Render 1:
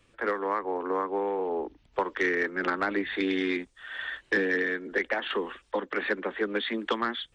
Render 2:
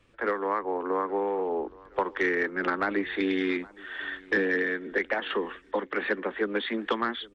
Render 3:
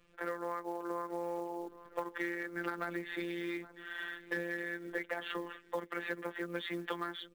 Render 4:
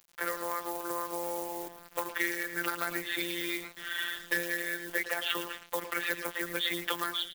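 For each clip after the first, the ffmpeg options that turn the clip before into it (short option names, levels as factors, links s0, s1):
-filter_complex "[0:a]highshelf=f=5500:g=-10,asplit=2[s0][s1];[s1]adelay=820,lowpass=f=4300:p=1,volume=0.0708,asplit=2[s2][s3];[s3]adelay=820,lowpass=f=4300:p=1,volume=0.52,asplit=2[s4][s5];[s5]adelay=820,lowpass=f=4300:p=1,volume=0.52[s6];[s0][s2][s4][s6]amix=inputs=4:normalize=0,volume=1.12"
-af "acompressor=threshold=0.0224:ratio=2.5,afftfilt=real='hypot(re,im)*cos(PI*b)':imag='0':win_size=1024:overlap=0.75,acrusher=bits=6:mode=log:mix=0:aa=0.000001,volume=0.891"
-filter_complex "[0:a]asplit=2[s0][s1];[s1]adelay=110,highpass=300,lowpass=3400,asoftclip=type=hard:threshold=0.0316,volume=0.355[s2];[s0][s2]amix=inputs=2:normalize=0,crystalizer=i=8.5:c=0,aeval=exprs='val(0)*gte(abs(val(0)),0.00562)':c=same"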